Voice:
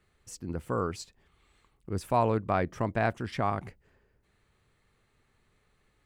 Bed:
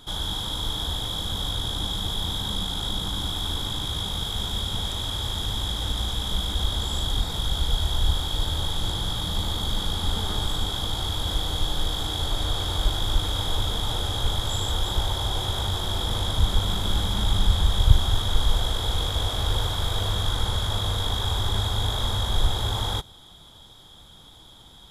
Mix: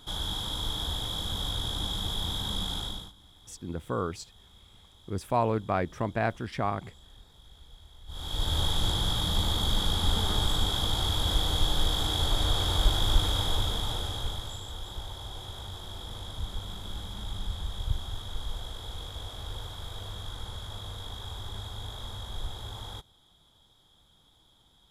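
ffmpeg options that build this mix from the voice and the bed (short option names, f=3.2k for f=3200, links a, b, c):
-filter_complex "[0:a]adelay=3200,volume=-0.5dB[a];[1:a]volume=23.5dB,afade=t=out:st=2.75:d=0.38:silence=0.0630957,afade=t=in:st=8.07:d=0.52:silence=0.0421697,afade=t=out:st=13.18:d=1.43:silence=0.211349[b];[a][b]amix=inputs=2:normalize=0"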